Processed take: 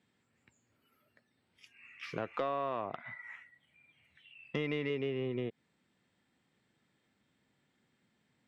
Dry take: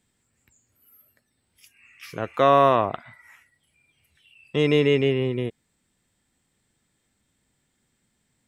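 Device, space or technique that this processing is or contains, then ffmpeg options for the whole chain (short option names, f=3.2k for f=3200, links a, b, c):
AM radio: -filter_complex "[0:a]asettb=1/sr,asplit=3[a][b][c];[a]atrim=end=2.954[d];[b]atrim=start=2.95:end=4.9,asetpts=PTS-STARTPTS,afade=t=in:d=0.004:c=qsin,afade=t=out:st=1.946:d=0.004:c=qsin,equalizer=f=400:t=o:w=0.33:g=-6,equalizer=f=2k:t=o:w=0.33:g=6,equalizer=f=5k:t=o:w=0.33:g=-9[e];[c]atrim=start=4.896[f];[d][e]acrossfade=d=0.004:c1=hsin:c2=qsin[g];[g][f]acrossfade=d=0.004:c1=qsin:c2=hsin,highpass=130,lowpass=3.7k,acompressor=threshold=-30dB:ratio=8,asoftclip=type=tanh:threshold=-20.5dB,volume=-1dB"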